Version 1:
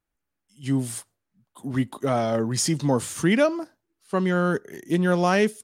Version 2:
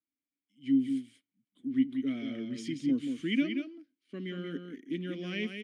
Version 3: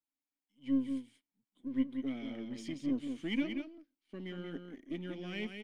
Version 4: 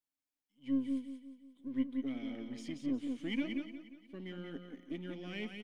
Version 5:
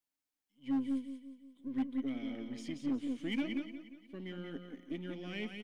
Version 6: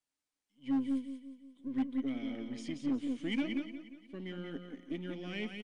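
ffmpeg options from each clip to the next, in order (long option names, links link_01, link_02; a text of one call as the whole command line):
ffmpeg -i in.wav -filter_complex "[0:a]asplit=3[link_01][link_02][link_03];[link_01]bandpass=frequency=270:width_type=q:width=8,volume=0dB[link_04];[link_02]bandpass=frequency=2290:width_type=q:width=8,volume=-6dB[link_05];[link_03]bandpass=frequency=3010:width_type=q:width=8,volume=-9dB[link_06];[link_04][link_05][link_06]amix=inputs=3:normalize=0,adynamicequalizer=threshold=0.00178:dfrequency=2900:dqfactor=2.9:tfrequency=2900:tqfactor=2.9:attack=5:release=100:ratio=0.375:range=2.5:mode=boostabove:tftype=bell,aecho=1:1:182:0.473" out.wav
ffmpeg -i in.wav -af "aeval=exprs='if(lt(val(0),0),0.708*val(0),val(0))':channel_layout=same,equalizer=frequency=840:width_type=o:width=0.53:gain=9.5,volume=-4dB" out.wav
ffmpeg -i in.wav -af "aecho=1:1:178|356|534|712|890:0.224|0.114|0.0582|0.0297|0.0151,volume=-2dB" out.wav
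ffmpeg -i in.wav -af "asoftclip=type=hard:threshold=-29dB,volume=1dB" out.wav
ffmpeg -i in.wav -af "aresample=22050,aresample=44100,volume=1.5dB" out.wav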